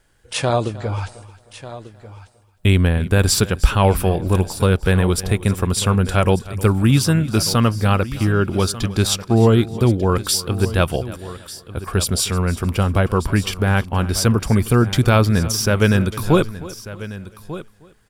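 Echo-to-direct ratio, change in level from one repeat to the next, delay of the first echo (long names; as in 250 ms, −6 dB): −13.5 dB, repeats not evenly spaced, 311 ms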